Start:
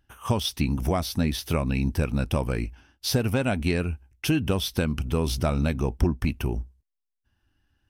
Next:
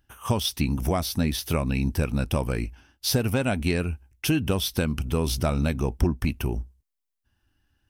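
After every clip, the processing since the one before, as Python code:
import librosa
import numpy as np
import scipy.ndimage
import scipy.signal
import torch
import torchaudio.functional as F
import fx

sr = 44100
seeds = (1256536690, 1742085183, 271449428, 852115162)

y = fx.high_shelf(x, sr, hz=7000.0, db=5.5)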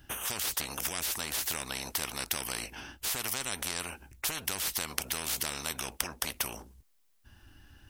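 y = fx.spectral_comp(x, sr, ratio=10.0)
y = F.gain(torch.from_numpy(y), 4.0).numpy()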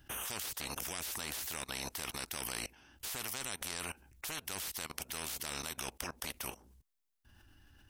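y = fx.level_steps(x, sr, step_db=21)
y = F.gain(torch.from_numpy(y), 1.5).numpy()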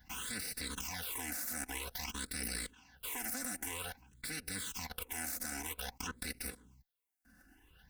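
y = fx.lower_of_two(x, sr, delay_ms=4.0)
y = fx.notch_comb(y, sr, f0_hz=610.0)
y = fx.phaser_stages(y, sr, stages=8, low_hz=120.0, high_hz=1000.0, hz=0.51, feedback_pct=15)
y = F.gain(torch.from_numpy(y), 5.0).numpy()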